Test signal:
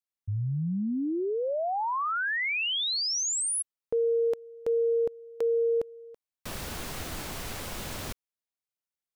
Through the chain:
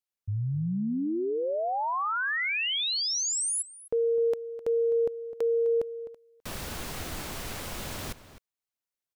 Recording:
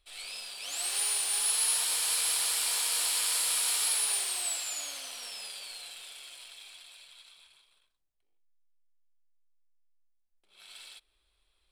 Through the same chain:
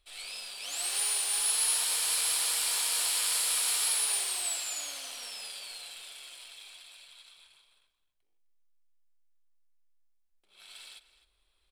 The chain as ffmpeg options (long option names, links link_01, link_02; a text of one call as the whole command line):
ffmpeg -i in.wav -filter_complex "[0:a]asplit=2[link_01][link_02];[link_02]adelay=256.6,volume=-14dB,highshelf=frequency=4000:gain=-5.77[link_03];[link_01][link_03]amix=inputs=2:normalize=0" out.wav